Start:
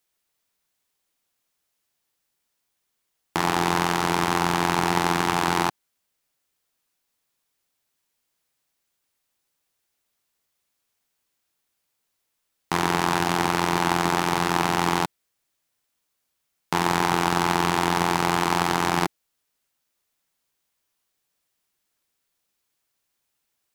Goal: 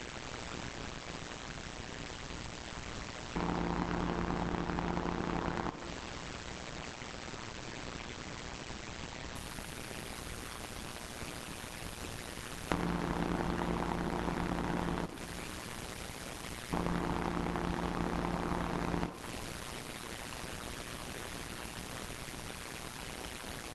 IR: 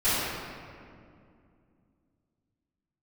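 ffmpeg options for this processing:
-filter_complex "[0:a]aeval=exprs='val(0)+0.5*0.0891*sgn(val(0))':c=same,acrossover=split=3400[a][b];[b]acompressor=threshold=-41dB:ratio=4:attack=1:release=60[c];[a][c]amix=inputs=2:normalize=0,lowshelf=f=330:g=9,acompressor=threshold=-22dB:ratio=16,aeval=exprs='val(0)+0.00398*(sin(2*PI*50*n/s)+sin(2*PI*2*50*n/s)/2+sin(2*PI*3*50*n/s)/3+sin(2*PI*4*50*n/s)/4+sin(2*PI*5*50*n/s)/5)':c=same,tremolo=f=120:d=0.974,aeval=exprs='val(0)*gte(abs(val(0)),0.0188)':c=same,asplit=5[d][e][f][g][h];[e]adelay=422,afreqshift=90,volume=-19.5dB[i];[f]adelay=844,afreqshift=180,volume=-25.7dB[j];[g]adelay=1266,afreqshift=270,volume=-31.9dB[k];[h]adelay=1688,afreqshift=360,volume=-38.1dB[l];[d][i][j][k][l]amix=inputs=5:normalize=0,asplit=2[m][n];[1:a]atrim=start_sample=2205,highshelf=f=3.7k:g=9,adelay=74[o];[n][o]afir=irnorm=-1:irlink=0,volume=-25.5dB[p];[m][p]amix=inputs=2:normalize=0,volume=-2.5dB" -ar 48000 -c:a libopus -b:a 12k

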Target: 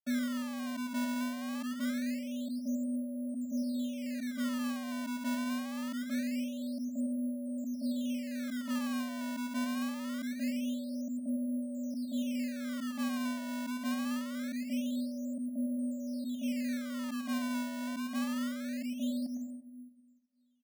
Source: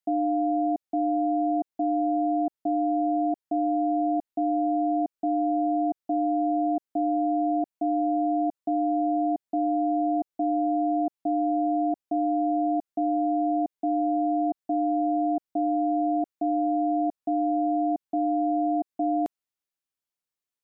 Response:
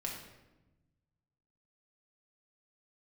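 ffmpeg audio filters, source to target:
-filter_complex "[0:a]asplit=3[a][b][c];[a]bandpass=f=300:t=q:w=8,volume=0dB[d];[b]bandpass=f=870:t=q:w=8,volume=-6dB[e];[c]bandpass=f=2.24k:t=q:w=8,volume=-9dB[f];[d][e][f]amix=inputs=3:normalize=0,lowshelf=f=210:g=-9,asplit=2[g][h];[1:a]atrim=start_sample=2205,adelay=104[i];[h][i]afir=irnorm=-1:irlink=0,volume=-5.5dB[j];[g][j]amix=inputs=2:normalize=0,asetrate=36028,aresample=44100,atempo=1.22405,acrusher=samples=20:mix=1:aa=0.000001:lfo=1:lforange=32:lforate=0.24"

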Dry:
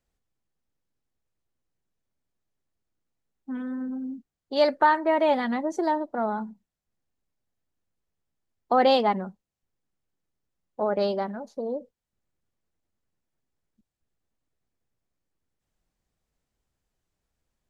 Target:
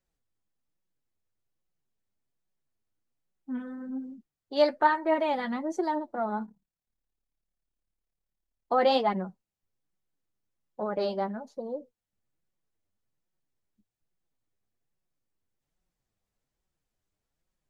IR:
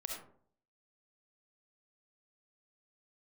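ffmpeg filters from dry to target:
-filter_complex "[0:a]flanger=delay=5.3:depth=4.9:regen=33:speed=1.2:shape=sinusoidal,asettb=1/sr,asplit=3[a][b][c];[a]atrim=end=6.464[d];[b]atrim=start=6.46:end=8.72,asetpts=PTS-STARTPTS,afade=t=in:d=0.004:c=qsin,afade=t=out:st=2.256:d=0.004:c=qsin,tremolo=f=36:d=0.824[e];[c]atrim=start=8.716[f];[d][e]acrossfade=d=0.004:c1=hsin:c2=qsin[g];[g][f]acrossfade=d=0.004:c1=qsin:c2=hsin"

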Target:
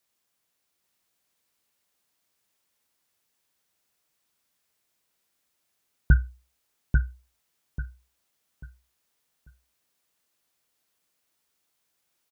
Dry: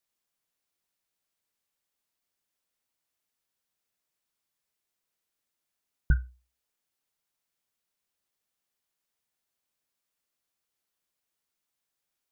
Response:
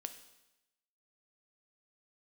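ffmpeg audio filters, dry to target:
-af "highpass=41,aecho=1:1:841|1682|2523|3364:0.631|0.177|0.0495|0.0139,volume=7dB"

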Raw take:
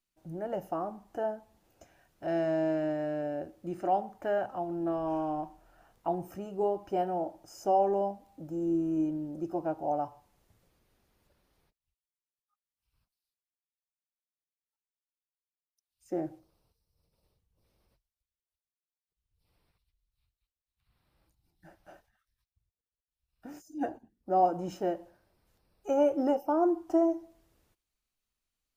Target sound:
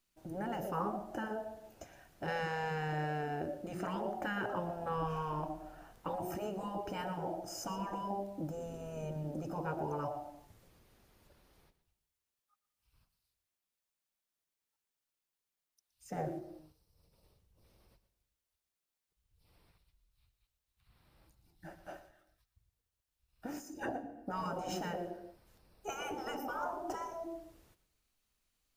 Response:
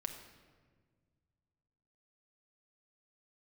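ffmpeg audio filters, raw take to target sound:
-filter_complex "[0:a]asplit=2[a][b];[1:a]atrim=start_sample=2205,afade=t=out:st=0.36:d=0.01,atrim=end_sample=16317,adelay=118[c];[b][c]afir=irnorm=-1:irlink=0,volume=-12.5dB[d];[a][d]amix=inputs=2:normalize=0,afftfilt=real='re*lt(hypot(re,im),0.0794)':imag='im*lt(hypot(re,im),0.0794)':win_size=1024:overlap=0.75,volume=5.5dB"

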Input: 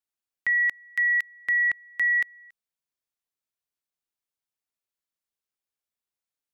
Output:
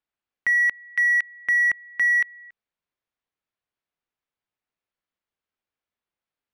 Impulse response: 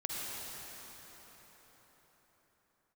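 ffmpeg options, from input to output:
-filter_complex "[0:a]lowpass=2.8k,asplit=2[a][b];[b]asoftclip=type=tanh:threshold=-34dB,volume=-7.5dB[c];[a][c]amix=inputs=2:normalize=0,volume=3dB"

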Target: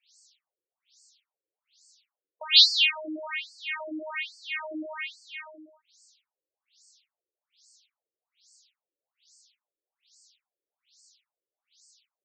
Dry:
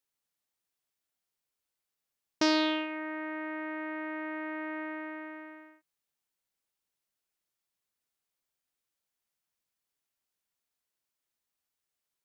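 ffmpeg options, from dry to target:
-af "aexciter=amount=12.2:drive=7.2:freq=2.6k,alimiter=level_in=7.5dB:limit=-1dB:release=50:level=0:latency=1,afftfilt=real='re*between(b*sr/1024,400*pow(6200/400,0.5+0.5*sin(2*PI*1.2*pts/sr))/1.41,400*pow(6200/400,0.5+0.5*sin(2*PI*1.2*pts/sr))*1.41)':imag='im*between(b*sr/1024,400*pow(6200/400,0.5+0.5*sin(2*PI*1.2*pts/sr))/1.41,400*pow(6200/400,0.5+0.5*sin(2*PI*1.2*pts/sr))*1.41)':win_size=1024:overlap=0.75"

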